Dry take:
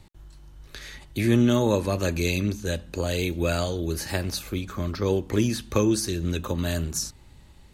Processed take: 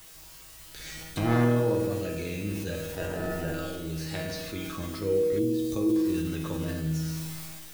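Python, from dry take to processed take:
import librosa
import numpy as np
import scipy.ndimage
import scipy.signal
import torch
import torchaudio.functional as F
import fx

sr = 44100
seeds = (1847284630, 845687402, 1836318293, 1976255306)

p1 = fx.halfwave_hold(x, sr, at=(0.79, 1.45))
p2 = fx.high_shelf(p1, sr, hz=4000.0, db=10.5)
p3 = fx.sample_hold(p2, sr, seeds[0], rate_hz=1100.0, jitter_pct=0, at=(2.82, 3.54))
p4 = p3 + fx.echo_single(p3, sr, ms=115, db=-15.5, dry=0)
p5 = fx.rotary(p4, sr, hz=0.6)
p6 = fx.env_lowpass_down(p5, sr, base_hz=1300.0, full_db=-20.5)
p7 = fx.rev_spring(p6, sr, rt60_s=1.3, pass_ms=(50,), chirp_ms=45, drr_db=5.5)
p8 = fx.quant_dither(p7, sr, seeds[1], bits=6, dither='triangular')
p9 = p7 + (p8 * librosa.db_to_amplitude(-4.0))
p10 = fx.comb_fb(p9, sr, f0_hz=160.0, decay_s=0.7, harmonics='all', damping=0.0, mix_pct=90)
p11 = fx.peak_eq(p10, sr, hz=1700.0, db=-13.0, octaves=1.3, at=(5.39, 5.96))
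p12 = fx.sustainer(p11, sr, db_per_s=23.0)
y = p12 * librosa.db_to_amplitude(4.5)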